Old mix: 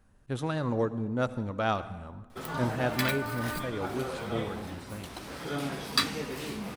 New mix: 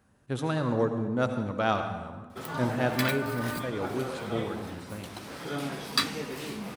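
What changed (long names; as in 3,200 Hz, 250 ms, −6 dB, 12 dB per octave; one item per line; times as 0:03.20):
speech: send +9.5 dB
master: add high-pass filter 92 Hz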